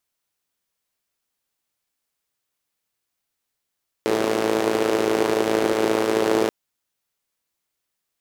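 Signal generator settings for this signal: four-cylinder engine model, steady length 2.43 s, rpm 3300, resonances 400 Hz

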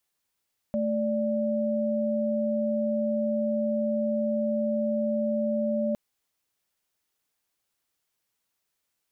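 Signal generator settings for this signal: chord A3/D5 sine, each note -26.5 dBFS 5.21 s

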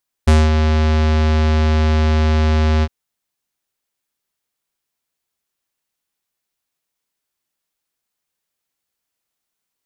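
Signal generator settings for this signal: synth note square D#2 24 dB/octave, low-pass 5.6 kHz, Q 0.74, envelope 1 oct, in 0.23 s, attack 11 ms, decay 0.21 s, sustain -5.5 dB, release 0.05 s, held 2.56 s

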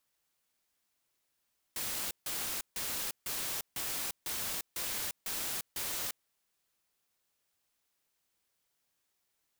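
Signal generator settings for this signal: noise bursts white, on 0.35 s, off 0.15 s, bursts 9, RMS -36.5 dBFS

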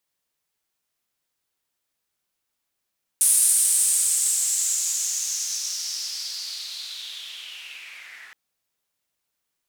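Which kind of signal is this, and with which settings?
swept filtered noise white, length 5.12 s bandpass, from 9.6 kHz, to 1.7 kHz, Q 4.9, linear, gain ramp -21.5 dB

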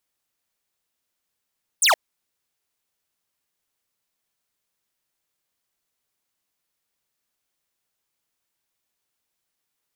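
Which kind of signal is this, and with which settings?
laser zap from 10 kHz, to 560 Hz, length 0.12 s square, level -16 dB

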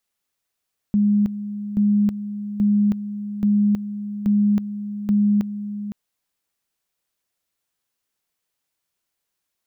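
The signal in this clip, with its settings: two-level tone 206 Hz -14 dBFS, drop 12 dB, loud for 0.32 s, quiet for 0.51 s, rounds 6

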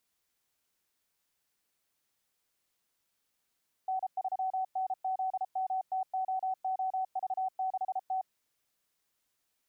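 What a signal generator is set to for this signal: Morse "N3NZMTOOV6T" 33 wpm 755 Hz -29 dBFS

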